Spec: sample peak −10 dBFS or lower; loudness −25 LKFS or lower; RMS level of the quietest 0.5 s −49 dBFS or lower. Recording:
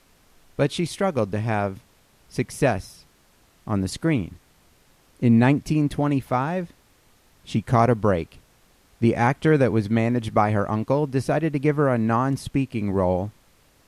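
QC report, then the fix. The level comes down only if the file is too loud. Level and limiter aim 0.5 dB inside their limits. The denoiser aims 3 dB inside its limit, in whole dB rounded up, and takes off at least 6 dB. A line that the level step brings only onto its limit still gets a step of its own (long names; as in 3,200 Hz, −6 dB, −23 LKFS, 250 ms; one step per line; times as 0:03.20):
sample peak −6.0 dBFS: out of spec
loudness −23.0 LKFS: out of spec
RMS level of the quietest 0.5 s −59 dBFS: in spec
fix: level −2.5 dB
brickwall limiter −10.5 dBFS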